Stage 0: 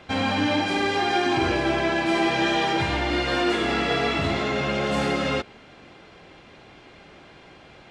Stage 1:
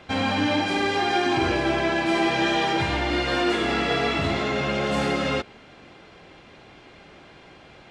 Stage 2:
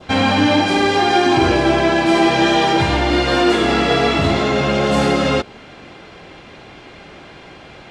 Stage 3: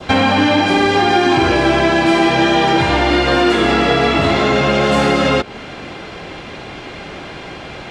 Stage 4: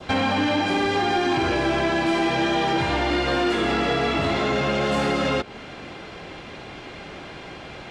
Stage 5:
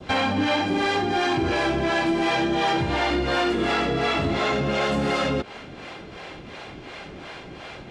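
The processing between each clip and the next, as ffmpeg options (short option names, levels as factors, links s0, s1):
-af anull
-af "adynamicequalizer=threshold=0.0112:dfrequency=2100:dqfactor=1.1:tfrequency=2100:tqfactor=1.1:attack=5:release=100:ratio=0.375:range=2:mode=cutabove:tftype=bell,volume=2.82"
-filter_complex "[0:a]acrossover=split=270|1100|3200[s0][s1][s2][s3];[s0]acompressor=threshold=0.0355:ratio=4[s4];[s1]acompressor=threshold=0.0631:ratio=4[s5];[s2]acompressor=threshold=0.0398:ratio=4[s6];[s3]acompressor=threshold=0.0112:ratio=4[s7];[s4][s5][s6][s7]amix=inputs=4:normalize=0,volume=2.66"
-af "asoftclip=type=tanh:threshold=0.501,volume=0.422"
-filter_complex "[0:a]acrossover=split=450[s0][s1];[s0]aeval=exprs='val(0)*(1-0.7/2+0.7/2*cos(2*PI*2.8*n/s))':c=same[s2];[s1]aeval=exprs='val(0)*(1-0.7/2-0.7/2*cos(2*PI*2.8*n/s))':c=same[s3];[s2][s3]amix=inputs=2:normalize=0,volume=1.33"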